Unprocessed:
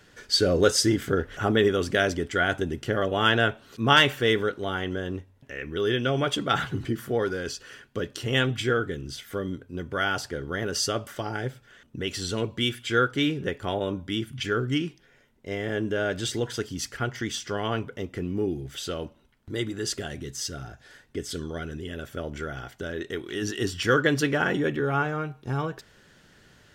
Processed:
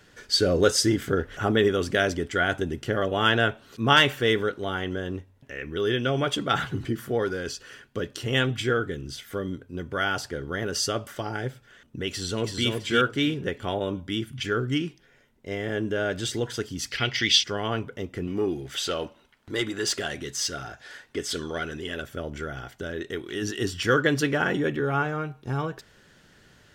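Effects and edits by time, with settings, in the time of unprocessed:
12.1–12.68 echo throw 0.33 s, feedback 25%, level -3.5 dB
16.91–17.44 band shelf 3300 Hz +16 dB
18.27–22.02 overdrive pedal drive 13 dB, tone 6000 Hz, clips at -14 dBFS

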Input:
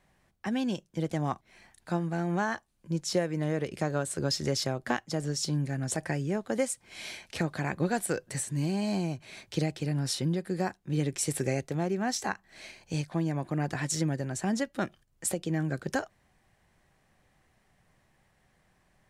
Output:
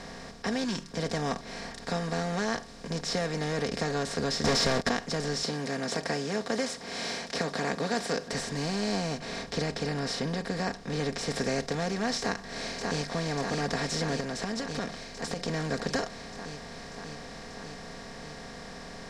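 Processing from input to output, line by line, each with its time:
0.64–0.91 spectral gain 400–890 Hz -27 dB
4.44–4.89 sample leveller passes 5
5.43–8.33 HPF 240 Hz
9.19–11.36 high shelf 4700 Hz -10 dB
12.19–13.13 echo throw 0.59 s, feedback 65%, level -6.5 dB
14.2–15.48 compressor, threshold -36 dBFS
whole clip: per-bin compression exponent 0.4; LPF 6000 Hz 12 dB/oct; comb 4.3 ms, depth 68%; gain -8 dB

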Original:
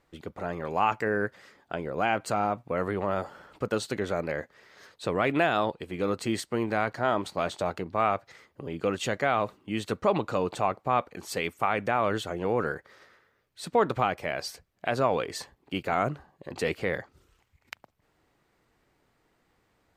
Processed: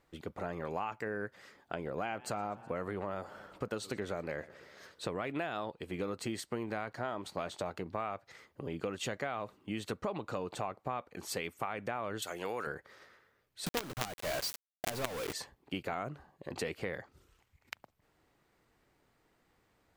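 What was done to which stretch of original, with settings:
1.73–5.07 warbling echo 0.124 s, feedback 65%, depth 197 cents, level -23 dB
12.22–12.67 tilt +4 dB/oct
13.66–15.33 companded quantiser 2-bit
whole clip: high shelf 11000 Hz +3 dB; compressor, threshold -31 dBFS; gain -2.5 dB

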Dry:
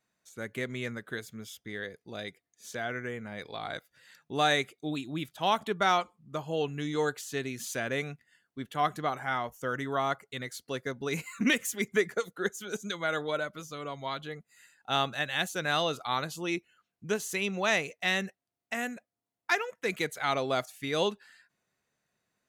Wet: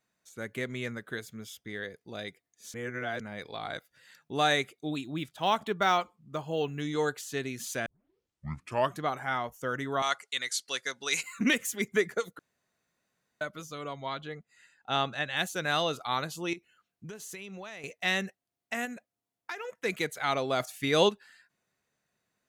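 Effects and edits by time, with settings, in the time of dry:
2.74–3.2 reverse
5.04–6.8 decimation joined by straight lines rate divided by 2×
7.86 tape start 1.12 s
10.02–11.23 weighting filter ITU-R 468
12.39–13.41 room tone
13.93–15.37 air absorption 67 m
16.53–17.84 compressor 12:1, threshold -39 dBFS
18.85–19.65 compressor, threshold -34 dBFS
20.6–21.09 gain +5 dB

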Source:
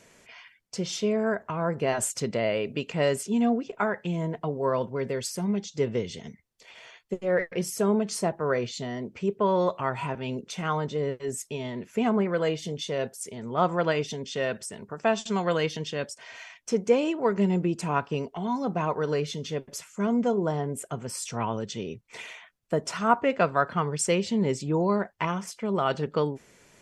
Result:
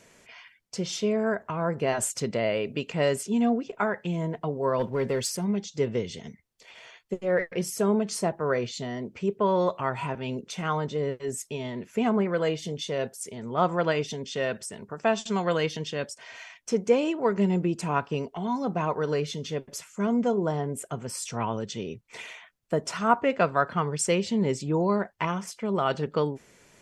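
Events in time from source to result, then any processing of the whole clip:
4.79–5.37 sample leveller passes 1

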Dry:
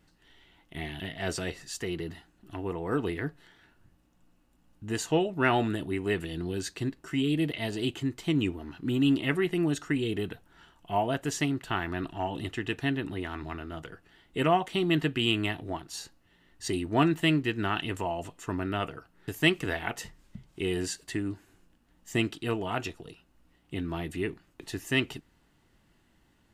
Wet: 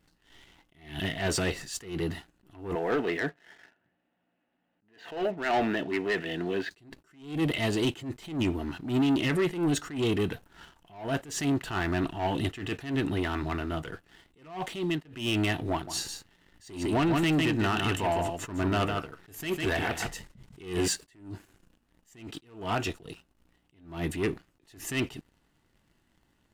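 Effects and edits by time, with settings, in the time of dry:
2.75–6.71 speaker cabinet 250–3300 Hz, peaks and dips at 320 Hz -4 dB, 680 Hz +5 dB, 1100 Hz -7 dB, 1800 Hz +6 dB
14.57–15.05 fade out, to -22.5 dB
15.72–20.88 echo 0.152 s -8 dB
whole clip: limiter -20 dBFS; sample leveller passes 2; attack slew limiter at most 120 dB/s

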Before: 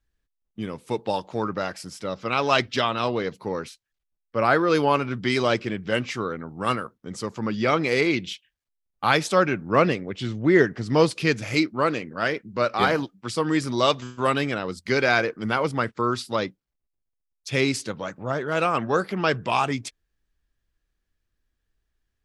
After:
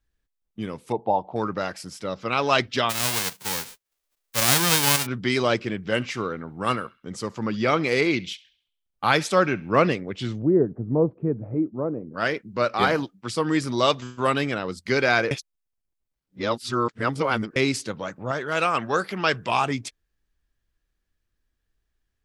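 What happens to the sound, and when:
0.92–1.36 EQ curve 530 Hz 0 dB, 750 Hz +10 dB, 1700 Hz -19 dB, 3400 Hz -14 dB, 6700 Hz -29 dB
2.89–5.05 spectral whitening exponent 0.1
5.9–9.87 narrowing echo 67 ms, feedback 46%, band-pass 3000 Hz, level -19 dB
10.42–12.14 Bessel low-pass 520 Hz, order 4
15.31–17.56 reverse
18.31–19.49 tilt shelf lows -4 dB

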